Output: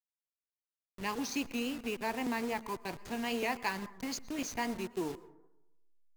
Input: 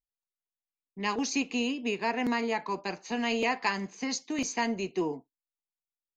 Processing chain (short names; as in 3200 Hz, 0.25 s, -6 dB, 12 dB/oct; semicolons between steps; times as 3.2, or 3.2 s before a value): level-crossing sampler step -35 dBFS; plate-style reverb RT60 0.92 s, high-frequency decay 0.3×, pre-delay 0.1 s, DRR 17.5 dB; vibrato 3.7 Hz 58 cents; gain -5.5 dB